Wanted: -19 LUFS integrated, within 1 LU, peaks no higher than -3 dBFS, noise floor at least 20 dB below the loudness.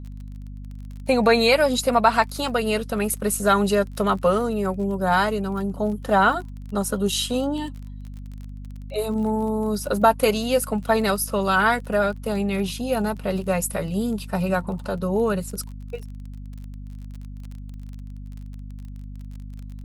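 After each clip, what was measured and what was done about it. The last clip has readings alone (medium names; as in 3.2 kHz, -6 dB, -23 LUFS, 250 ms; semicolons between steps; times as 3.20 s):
tick rate 32 per s; hum 50 Hz; highest harmonic 250 Hz; hum level -33 dBFS; loudness -22.5 LUFS; peak level -4.0 dBFS; loudness target -19.0 LUFS
-> de-click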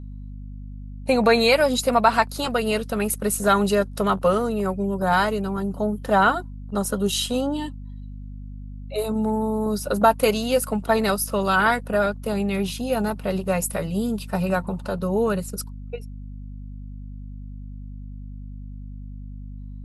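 tick rate 0 per s; hum 50 Hz; highest harmonic 250 Hz; hum level -34 dBFS
-> de-hum 50 Hz, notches 5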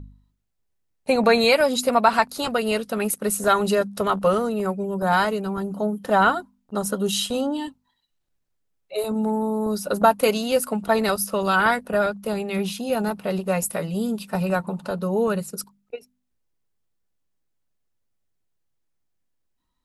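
hum not found; loudness -22.5 LUFS; peak level -3.5 dBFS; loudness target -19.0 LUFS
-> trim +3.5 dB; peak limiter -3 dBFS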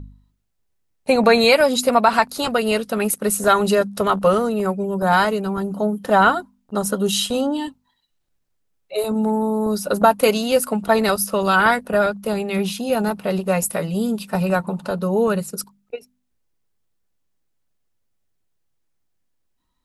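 loudness -19.0 LUFS; peak level -3.0 dBFS; noise floor -70 dBFS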